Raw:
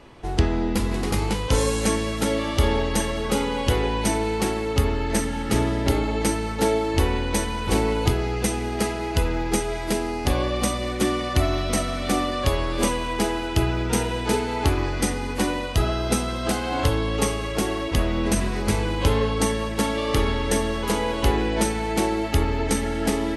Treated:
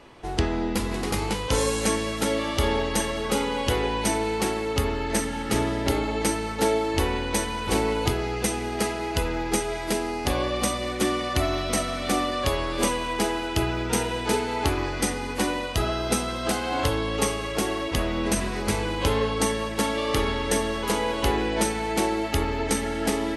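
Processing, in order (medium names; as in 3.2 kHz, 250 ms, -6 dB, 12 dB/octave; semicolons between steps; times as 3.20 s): bass shelf 220 Hz -6.5 dB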